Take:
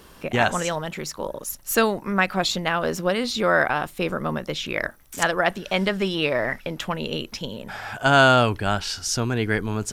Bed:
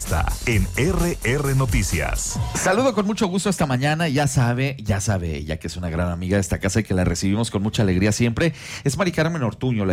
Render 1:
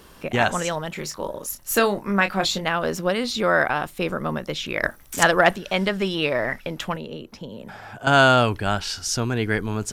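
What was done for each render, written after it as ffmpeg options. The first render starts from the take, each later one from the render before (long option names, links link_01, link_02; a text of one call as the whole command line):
ffmpeg -i in.wav -filter_complex "[0:a]asettb=1/sr,asplit=3[link_01][link_02][link_03];[link_01]atrim=end=0.934[link_04];[link_02]atrim=start=0.93:end=2.65,asetpts=PTS-STARTPTS,afade=type=in:duration=0.004:curve=qsin,afade=type=out:start_time=1.716:duration=0.004:curve=qsin,asplit=2[link_05][link_06];[link_06]adelay=25,volume=-8dB[link_07];[link_05][link_07]amix=inputs=2:normalize=0,atrim=end_sample=75852[link_08];[link_03]atrim=start=2.646[link_09];[link_04][link_08]acrossfade=duration=0.004:curve1=hsin:curve2=qsin[link_10];[link_10][link_09]acrossfade=duration=0.004:curve1=qsin:curve2=hsin,asettb=1/sr,asplit=3[link_11][link_12][link_13];[link_11]atrim=end=4.834[link_14];[link_12]atrim=start=4.83:end=5.56,asetpts=PTS-STARTPTS,afade=type=in:duration=0.004:curve=qsin,afade=type=out:start_time=0.726:duration=0.004:curve=qsin,acontrast=32[link_15];[link_13]atrim=start=5.556[link_16];[link_14][link_15]acrossfade=duration=0.004:curve1=hsin:curve2=qsin[link_17];[link_17][link_16]acrossfade=duration=0.004:curve1=qsin:curve2=hsin,asettb=1/sr,asplit=3[link_18][link_19][link_20];[link_18]atrim=end=6.964[link_21];[link_19]atrim=start=6.96:end=8.07,asetpts=PTS-STARTPTS,afade=type=in:duration=0.004:curve=qsin,afade=type=out:start_time=1.106:duration=0.004:curve=qsin,acrossover=split=93|530|1300[link_22][link_23][link_24][link_25];[link_22]acompressor=threshold=-58dB:ratio=3[link_26];[link_23]acompressor=threshold=-34dB:ratio=3[link_27];[link_24]acompressor=threshold=-45dB:ratio=3[link_28];[link_25]acompressor=threshold=-48dB:ratio=3[link_29];[link_26][link_27][link_28][link_29]amix=inputs=4:normalize=0[link_30];[link_20]atrim=start=8.066[link_31];[link_21][link_30]acrossfade=duration=0.004:curve1=hsin:curve2=qsin[link_32];[link_32][link_31]acrossfade=duration=0.004:curve1=qsin:curve2=hsin" out.wav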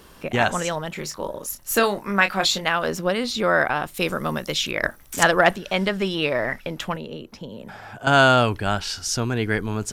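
ffmpeg -i in.wav -filter_complex "[0:a]asettb=1/sr,asplit=3[link_01][link_02][link_03];[link_01]atrim=end=1.834[link_04];[link_02]atrim=start=1.83:end=2.88,asetpts=PTS-STARTPTS,afade=type=in:duration=0.004:curve=qsin,afade=type=out:start_time=1.046:duration=0.004:curve=qsin,tiltshelf=frequency=650:gain=-3.5[link_05];[link_03]atrim=start=2.876[link_06];[link_04][link_05]acrossfade=duration=0.004:curve1=hsin:curve2=qsin[link_07];[link_07][link_06]acrossfade=duration=0.004:curve1=qsin:curve2=hsin,asettb=1/sr,asplit=3[link_08][link_09][link_10];[link_08]atrim=end=3.944[link_11];[link_09]atrim=start=3.94:end=4.71,asetpts=PTS-STARTPTS,afade=type=in:duration=0.004:curve=qsin,afade=type=out:start_time=0.766:duration=0.004:curve=qsin,highshelf=frequency=3000:gain=11[link_12];[link_10]atrim=start=4.706[link_13];[link_11][link_12]acrossfade=duration=0.004:curve1=hsin:curve2=qsin[link_14];[link_14][link_13]acrossfade=duration=0.004:curve1=qsin:curve2=hsin" out.wav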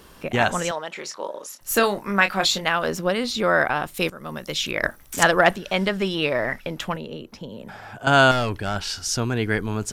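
ffmpeg -i in.wav -filter_complex "[0:a]asettb=1/sr,asplit=3[link_01][link_02][link_03];[link_01]atrim=end=0.714[link_04];[link_02]atrim=start=0.71:end=1.61,asetpts=PTS-STARTPTS,afade=type=in:duration=0.004:curve=qsin,afade=type=out:start_time=0.896:duration=0.004:curve=qsin,highpass=400,lowpass=7100[link_05];[link_03]atrim=start=1.606[link_06];[link_04][link_05]acrossfade=duration=0.004:curve1=hsin:curve2=qsin[link_07];[link_07][link_06]acrossfade=duration=0.004:curve1=qsin:curve2=hsin,asettb=1/sr,asplit=3[link_08][link_09][link_10];[link_08]atrim=end=8.314[link_11];[link_09]atrim=start=8.31:end=8.76,asetpts=PTS-STARTPTS,afade=type=in:duration=0.004:curve=qsin,afade=type=out:start_time=0.446:duration=0.004:curve=qsin,aeval=exprs='(tanh(8.91*val(0)+0.35)-tanh(0.35))/8.91':channel_layout=same[link_12];[link_10]atrim=start=8.756[link_13];[link_11][link_12]acrossfade=duration=0.004:curve1=hsin:curve2=qsin[link_14];[link_14][link_13]acrossfade=duration=0.004:curve1=qsin:curve2=hsin,asplit=2[link_15][link_16];[link_15]atrim=end=4.1,asetpts=PTS-STARTPTS,afade=type=out:start_time=4.096:duration=0.004:curve=hsin:silence=0.133352[link_17];[link_16]atrim=start=4.1,asetpts=PTS-STARTPTS,afade=type=in:duration=0.61:silence=0.133352[link_18];[link_17][link_18]concat=n=2:v=0:a=1" out.wav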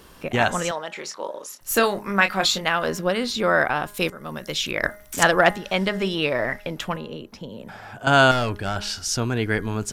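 ffmpeg -i in.wav -af "bandreject=frequency=206.3:width_type=h:width=4,bandreject=frequency=412.6:width_type=h:width=4,bandreject=frequency=618.9:width_type=h:width=4,bandreject=frequency=825.2:width_type=h:width=4,bandreject=frequency=1031.5:width_type=h:width=4,bandreject=frequency=1237.8:width_type=h:width=4,bandreject=frequency=1444.1:width_type=h:width=4,bandreject=frequency=1650.4:width_type=h:width=4,bandreject=frequency=1856.7:width_type=h:width=4,bandreject=frequency=2063:width_type=h:width=4" out.wav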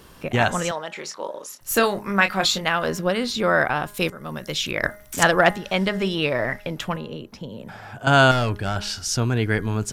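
ffmpeg -i in.wav -af "equalizer=frequency=120:width=1.3:gain=4.5" out.wav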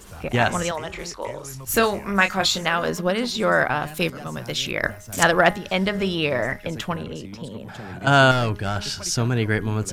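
ffmpeg -i in.wav -i bed.wav -filter_complex "[1:a]volume=-19dB[link_01];[0:a][link_01]amix=inputs=2:normalize=0" out.wav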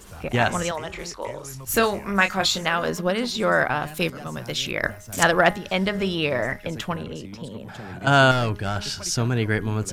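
ffmpeg -i in.wav -af "volume=-1dB" out.wav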